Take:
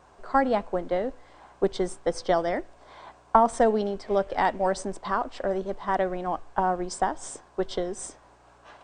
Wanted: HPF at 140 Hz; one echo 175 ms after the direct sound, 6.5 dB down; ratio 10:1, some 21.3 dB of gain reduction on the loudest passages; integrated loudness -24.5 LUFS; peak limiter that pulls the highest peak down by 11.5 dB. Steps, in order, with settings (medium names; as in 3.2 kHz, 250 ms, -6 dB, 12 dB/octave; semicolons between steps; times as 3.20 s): high-pass 140 Hz; compression 10:1, threshold -36 dBFS; peak limiter -32.5 dBFS; delay 175 ms -6.5 dB; trim +18.5 dB